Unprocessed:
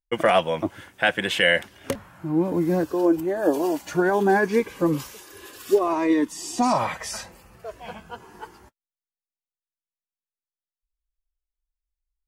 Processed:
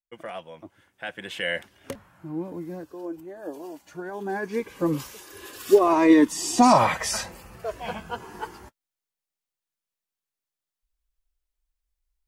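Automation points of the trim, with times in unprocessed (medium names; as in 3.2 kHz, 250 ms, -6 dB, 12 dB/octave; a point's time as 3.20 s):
0.75 s -18 dB
1.56 s -8 dB
2.26 s -8 dB
2.81 s -15 dB
4.06 s -15 dB
4.87 s -2.5 dB
6.13 s +5 dB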